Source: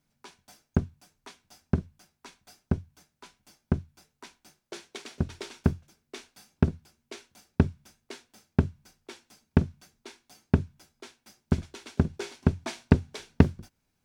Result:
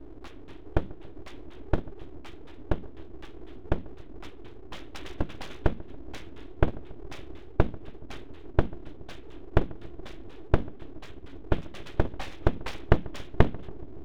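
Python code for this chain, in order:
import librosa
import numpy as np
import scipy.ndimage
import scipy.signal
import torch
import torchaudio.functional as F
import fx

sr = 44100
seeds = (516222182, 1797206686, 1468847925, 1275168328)

p1 = fx.cvsd(x, sr, bps=32000)
p2 = scipy.signal.sosfilt(scipy.signal.ellip(4, 1.0, 40, 3500.0, 'lowpass', fs=sr, output='sos'), p1)
p3 = fx.dmg_noise_band(p2, sr, seeds[0], low_hz=110.0, high_hz=230.0, level_db=-45.0)
p4 = np.abs(p3)
p5 = p4 + fx.echo_filtered(p4, sr, ms=141, feedback_pct=74, hz=1100.0, wet_db=-20.5, dry=0)
y = p5 * 10.0 ** (3.0 / 20.0)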